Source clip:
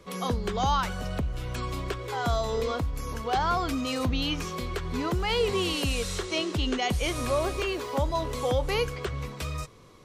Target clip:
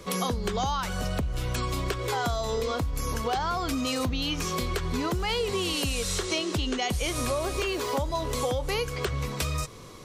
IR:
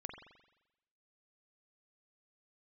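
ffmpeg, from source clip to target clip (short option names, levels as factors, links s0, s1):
-af "bass=f=250:g=0,treble=f=4000:g=5,acompressor=threshold=0.0224:ratio=6,volume=2.37"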